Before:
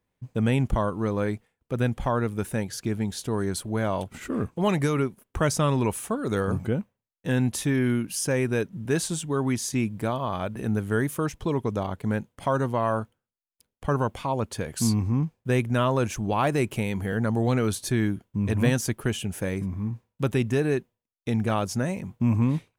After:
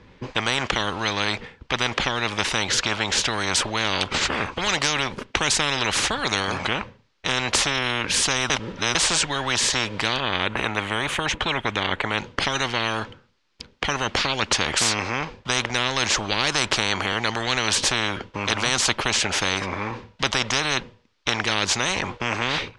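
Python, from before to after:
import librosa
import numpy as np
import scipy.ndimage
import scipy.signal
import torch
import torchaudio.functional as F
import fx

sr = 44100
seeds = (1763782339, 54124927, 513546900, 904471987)

y = fx.peak_eq(x, sr, hz=5200.0, db=-14.0, octaves=0.77, at=(10.2, 12.18))
y = fx.edit(y, sr, fx.reverse_span(start_s=8.5, length_s=0.45), tone=tone)
y = scipy.signal.sosfilt(scipy.signal.butter(4, 5000.0, 'lowpass', fs=sr, output='sos'), y)
y = fx.peak_eq(y, sr, hz=690.0, db=-10.5, octaves=0.23)
y = fx.spectral_comp(y, sr, ratio=10.0)
y = y * 10.0 ** (8.5 / 20.0)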